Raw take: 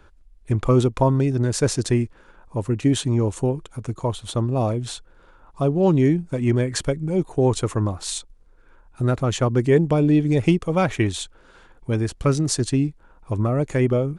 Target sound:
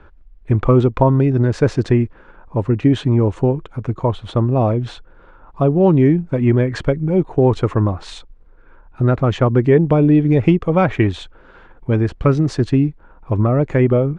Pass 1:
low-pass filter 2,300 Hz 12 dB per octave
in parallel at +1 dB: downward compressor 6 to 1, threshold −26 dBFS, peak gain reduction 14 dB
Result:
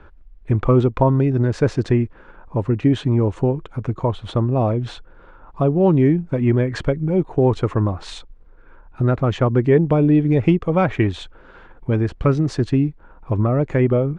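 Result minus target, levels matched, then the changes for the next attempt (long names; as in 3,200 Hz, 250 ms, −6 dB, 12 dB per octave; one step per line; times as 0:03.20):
downward compressor: peak gain reduction +7.5 dB
change: downward compressor 6 to 1, threshold −17 dBFS, peak gain reduction 6.5 dB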